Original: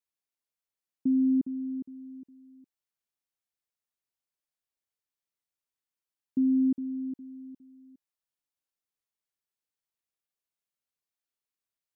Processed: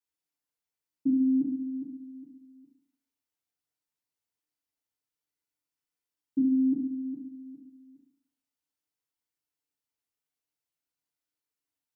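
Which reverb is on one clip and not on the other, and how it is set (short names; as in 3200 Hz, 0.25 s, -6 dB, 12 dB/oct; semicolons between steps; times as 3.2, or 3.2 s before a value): FDN reverb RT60 0.52 s, low-frequency decay 1.25×, high-frequency decay 0.9×, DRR -6.5 dB; gain -7 dB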